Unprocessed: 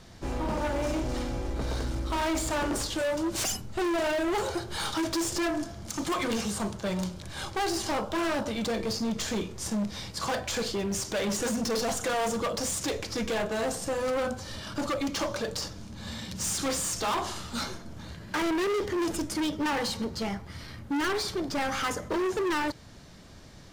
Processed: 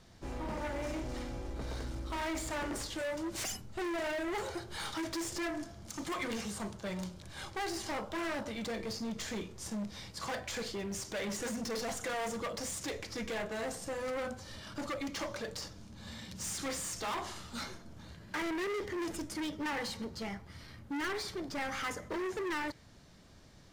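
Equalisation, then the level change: dynamic bell 2 kHz, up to +6 dB, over -50 dBFS, Q 3.2; -8.5 dB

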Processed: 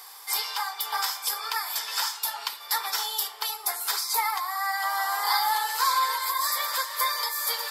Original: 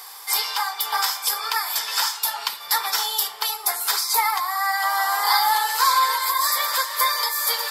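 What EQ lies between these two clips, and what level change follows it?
brick-wall FIR high-pass 200 Hz; -5.5 dB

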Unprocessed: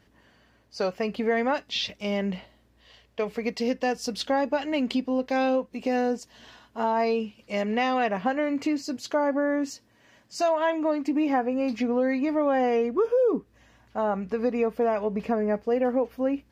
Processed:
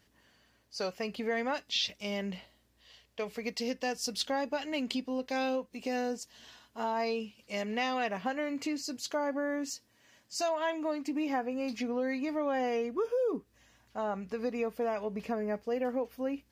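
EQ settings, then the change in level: treble shelf 3.1 kHz +11.5 dB; -8.5 dB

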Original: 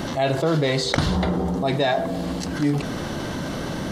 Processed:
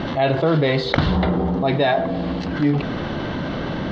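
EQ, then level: low-pass 3.8 kHz 24 dB/octave; +3.0 dB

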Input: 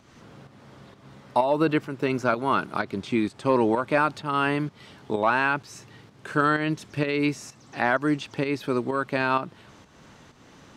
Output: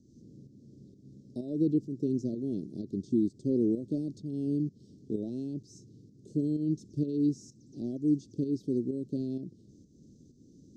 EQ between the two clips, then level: inverse Chebyshev band-stop 940–2300 Hz, stop band 70 dB; distance through air 170 m; bass shelf 240 Hz -10 dB; +4.0 dB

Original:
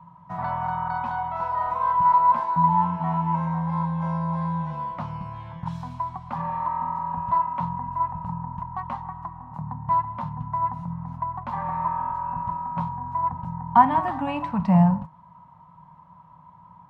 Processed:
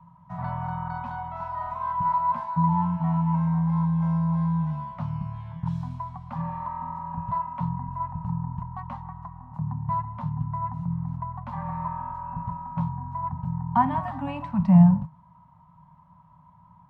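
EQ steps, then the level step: elliptic band-stop 280–560 Hz; bass shelf 210 Hz +8.5 dB; dynamic bell 140 Hz, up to +6 dB, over -35 dBFS, Q 1.2; -6.0 dB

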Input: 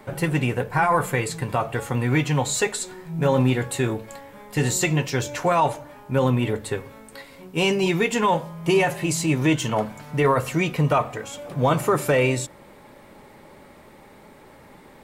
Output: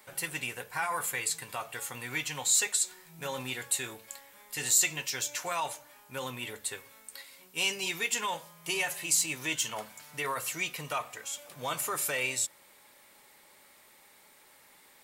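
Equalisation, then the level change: pre-emphasis filter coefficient 0.97; treble shelf 7.1 kHz -4.5 dB; +4.5 dB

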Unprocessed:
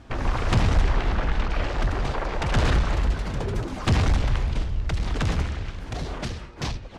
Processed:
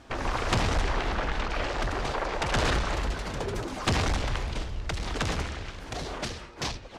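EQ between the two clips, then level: tone controls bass -8 dB, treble +3 dB; 0.0 dB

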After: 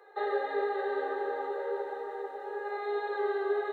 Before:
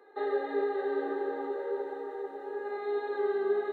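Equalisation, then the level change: high-pass 450 Hz 24 dB/octave; +3.5 dB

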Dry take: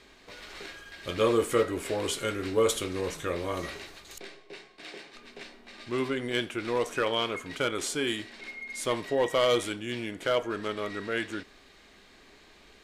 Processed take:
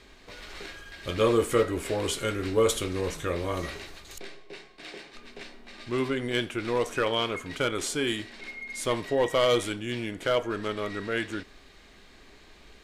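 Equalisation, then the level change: bass shelf 97 Hz +9 dB; +1.0 dB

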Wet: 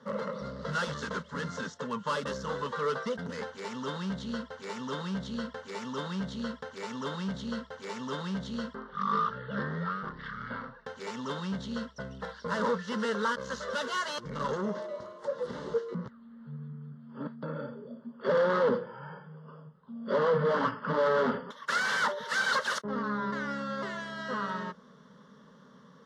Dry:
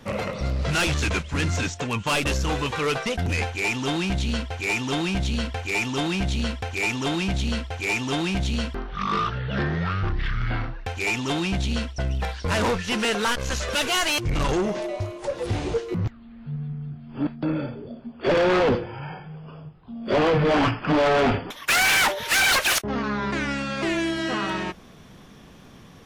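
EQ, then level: band-pass 170–3700 Hz; peaking EQ 320 Hz -6 dB 0.4 oct; static phaser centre 490 Hz, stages 8; -3.0 dB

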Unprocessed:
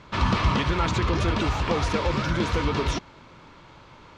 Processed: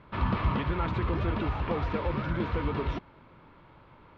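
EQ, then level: distance through air 400 m; -4.5 dB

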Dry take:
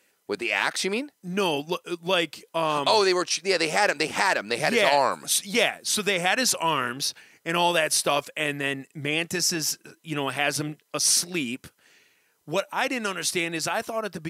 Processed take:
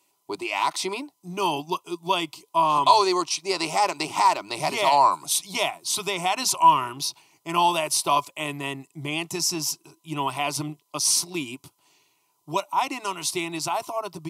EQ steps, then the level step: dynamic bell 1.7 kHz, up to +5 dB, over -37 dBFS, Q 1.2; peaking EQ 1 kHz +12 dB 0.22 oct; static phaser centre 330 Hz, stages 8; 0.0 dB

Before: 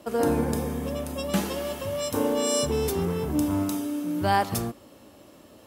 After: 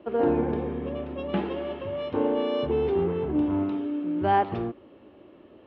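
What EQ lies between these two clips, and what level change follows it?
steep low-pass 3.2 kHz 36 dB/octave; peaking EQ 370 Hz +10 dB 0.58 oct; dynamic bell 790 Hz, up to +5 dB, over -38 dBFS, Q 3.3; -4.0 dB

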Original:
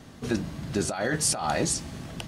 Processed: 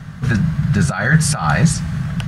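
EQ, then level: resonant low shelf 220 Hz +11 dB, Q 3; peaking EQ 1.5 kHz +13 dB 1.1 oct; +3.0 dB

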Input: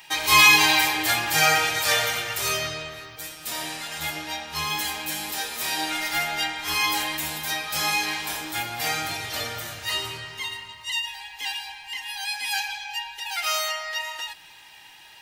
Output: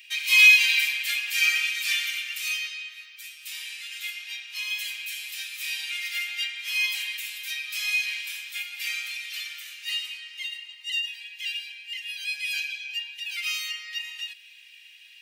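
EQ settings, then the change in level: ladder high-pass 2.2 kHz, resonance 60%; +2.5 dB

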